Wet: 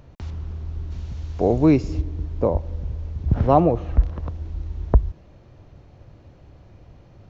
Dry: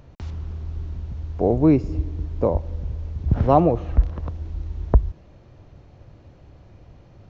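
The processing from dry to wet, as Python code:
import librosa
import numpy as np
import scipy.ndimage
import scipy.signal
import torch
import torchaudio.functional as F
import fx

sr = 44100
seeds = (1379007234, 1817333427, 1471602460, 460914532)

y = fx.high_shelf(x, sr, hz=fx.line((0.9, 2400.0), (2.0, 2200.0)), db=12.0, at=(0.9, 2.0), fade=0.02)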